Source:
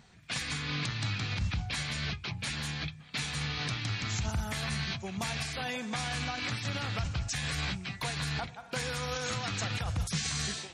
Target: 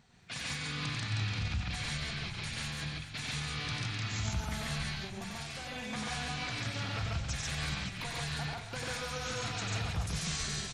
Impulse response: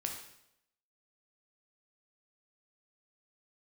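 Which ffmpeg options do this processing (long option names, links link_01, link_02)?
-filter_complex "[0:a]asplit=2[link_01][link_02];[link_02]asplit=5[link_03][link_04][link_05][link_06][link_07];[link_03]adelay=426,afreqshift=-41,volume=-12dB[link_08];[link_04]adelay=852,afreqshift=-82,volume=-18.7dB[link_09];[link_05]adelay=1278,afreqshift=-123,volume=-25.5dB[link_10];[link_06]adelay=1704,afreqshift=-164,volume=-32.2dB[link_11];[link_07]adelay=2130,afreqshift=-205,volume=-39dB[link_12];[link_08][link_09][link_10][link_11][link_12]amix=inputs=5:normalize=0[link_13];[link_01][link_13]amix=inputs=2:normalize=0,asettb=1/sr,asplit=3[link_14][link_15][link_16];[link_14]atrim=end=4.894[link_17];[link_15]atrim=start=4.89:end=5.76,asetpts=PTS-STARTPTS,afade=type=in:duration=0.004:curve=qsin,afade=type=out:start_time=0.866:duration=0.004:curve=qsin,acompressor=threshold=-35dB:ratio=6[link_18];[link_16]atrim=start=5.756[link_19];[link_17][link_18]acrossfade=duration=0.004:curve1=hsin:curve2=qsin[link_20];[link_20][link_19]acrossfade=duration=0.004:curve1=qsin:curve2=hsin,asplit=2[link_21][link_22];[link_22]aecho=0:1:93.29|139.9:0.708|1[link_23];[link_21][link_23]amix=inputs=2:normalize=0,volume=-6.5dB"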